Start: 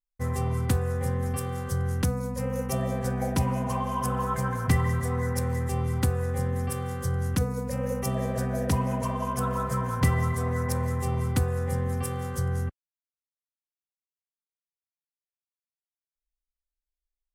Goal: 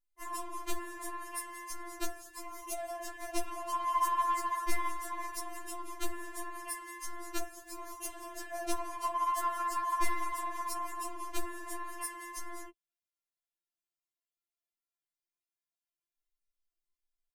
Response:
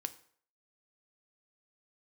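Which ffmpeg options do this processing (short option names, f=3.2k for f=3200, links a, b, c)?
-af "aeval=exprs='clip(val(0),-1,0.0562)':c=same,afftfilt=real='re*4*eq(mod(b,16),0)':imag='im*4*eq(mod(b,16),0)':win_size=2048:overlap=0.75"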